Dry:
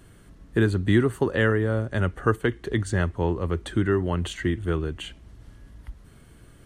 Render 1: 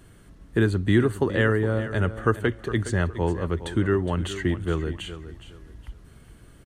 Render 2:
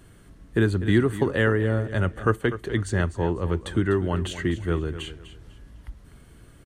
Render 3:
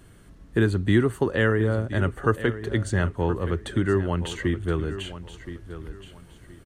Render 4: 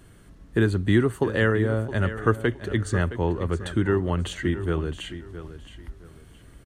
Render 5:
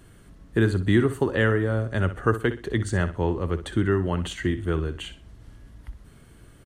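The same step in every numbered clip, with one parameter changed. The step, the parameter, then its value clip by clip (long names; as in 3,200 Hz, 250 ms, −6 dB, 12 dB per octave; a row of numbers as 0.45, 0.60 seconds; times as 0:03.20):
repeating echo, delay time: 414, 248, 1,022, 667, 62 milliseconds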